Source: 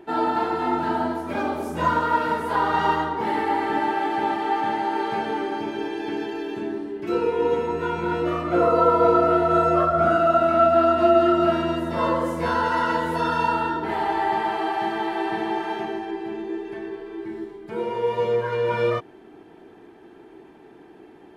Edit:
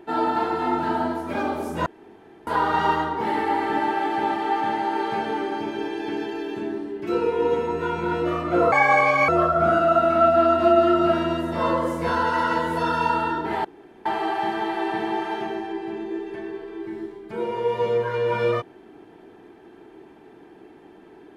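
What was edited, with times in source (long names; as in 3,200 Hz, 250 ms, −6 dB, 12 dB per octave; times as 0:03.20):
0:01.86–0:02.47: fill with room tone
0:08.72–0:09.67: play speed 168%
0:14.03–0:14.44: fill with room tone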